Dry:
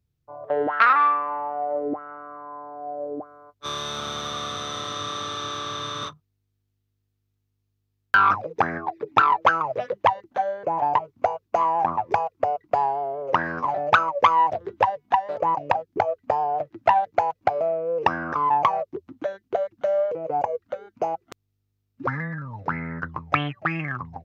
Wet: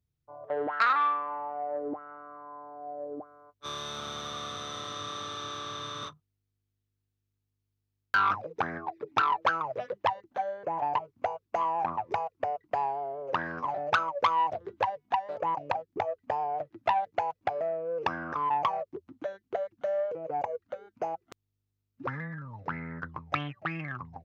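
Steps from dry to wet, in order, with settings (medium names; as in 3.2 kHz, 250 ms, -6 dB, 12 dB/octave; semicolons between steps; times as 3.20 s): transformer saturation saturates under 1.7 kHz; trim -7 dB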